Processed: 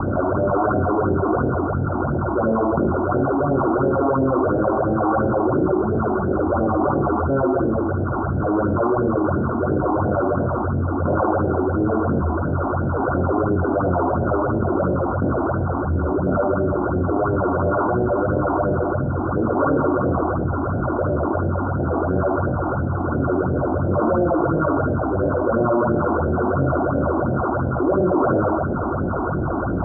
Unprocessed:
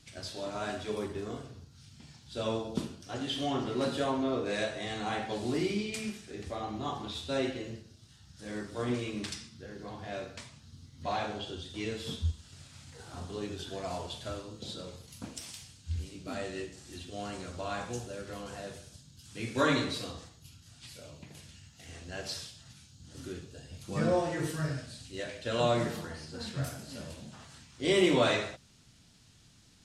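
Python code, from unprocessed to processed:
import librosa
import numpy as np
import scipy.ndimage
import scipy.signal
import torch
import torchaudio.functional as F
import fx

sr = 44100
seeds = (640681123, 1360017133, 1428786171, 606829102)

y = fx.bin_compress(x, sr, power=0.4)
y = scipy.signal.sosfilt(scipy.signal.cheby1(10, 1.0, 1500.0, 'lowpass', fs=sr, output='sos'), y)
y = fx.peak_eq(y, sr, hz=710.0, db=5.0, octaves=2.0)
y = fx.room_early_taps(y, sr, ms=(22, 76), db=(-5.5, -4.5))
y = fx.phaser_stages(y, sr, stages=6, low_hz=130.0, high_hz=1200.0, hz=2.9, feedback_pct=25)
y = fx.env_flatten(y, sr, amount_pct=70)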